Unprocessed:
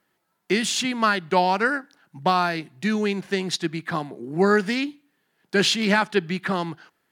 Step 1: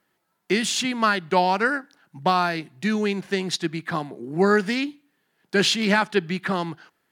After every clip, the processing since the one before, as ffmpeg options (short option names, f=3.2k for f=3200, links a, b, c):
-af anull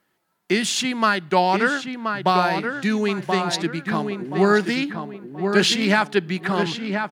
-filter_complex "[0:a]asplit=2[a][b];[b]adelay=1028,lowpass=f=2.3k:p=1,volume=-5.5dB,asplit=2[c][d];[d]adelay=1028,lowpass=f=2.3k:p=1,volume=0.35,asplit=2[e][f];[f]adelay=1028,lowpass=f=2.3k:p=1,volume=0.35,asplit=2[g][h];[h]adelay=1028,lowpass=f=2.3k:p=1,volume=0.35[i];[a][c][e][g][i]amix=inputs=5:normalize=0,volume=1.5dB"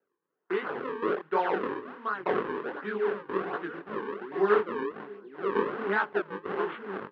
-af "acrusher=samples=37:mix=1:aa=0.000001:lfo=1:lforange=59.2:lforate=1.3,flanger=delay=18.5:depth=7.7:speed=2.8,highpass=370,equalizer=f=420:t=q:w=4:g=9,equalizer=f=640:t=q:w=4:g=-6,equalizer=f=1.1k:t=q:w=4:g=5,equalizer=f=1.5k:t=q:w=4:g=5,equalizer=f=2.3k:t=q:w=4:g=-6,lowpass=f=2.5k:w=0.5412,lowpass=f=2.5k:w=1.3066,volume=-6dB"